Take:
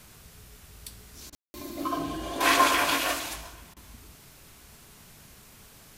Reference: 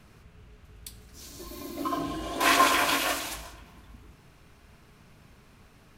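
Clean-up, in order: room tone fill 1.35–1.54 s; interpolate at 1.30/3.74 s, 24 ms; noise print and reduce 6 dB

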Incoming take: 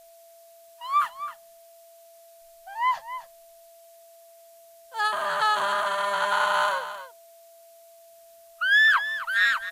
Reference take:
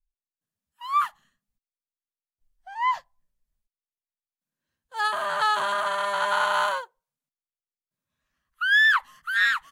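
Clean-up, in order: band-stop 670 Hz, Q 30; expander -44 dBFS, range -21 dB; inverse comb 264 ms -12 dB

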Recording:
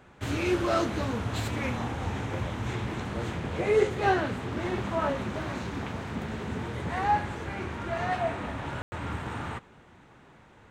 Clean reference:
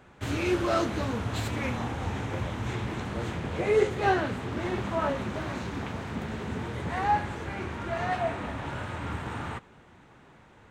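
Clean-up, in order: room tone fill 8.82–8.92 s

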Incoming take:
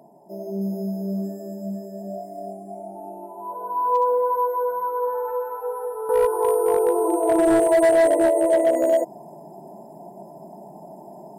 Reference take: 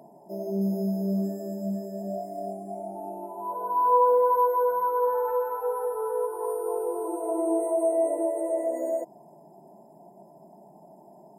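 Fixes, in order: clip repair -12.5 dBFS; trim 0 dB, from 6.09 s -10 dB

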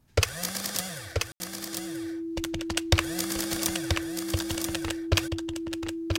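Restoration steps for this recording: band-stop 330 Hz, Q 30; room tone fill 1.32–1.40 s; inverse comb 983 ms -5 dB

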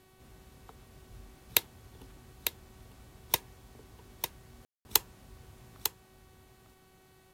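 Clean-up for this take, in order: de-hum 376.2 Hz, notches 12; room tone fill 4.65–4.85 s; expander -53 dBFS, range -21 dB; inverse comb 900 ms -7 dB

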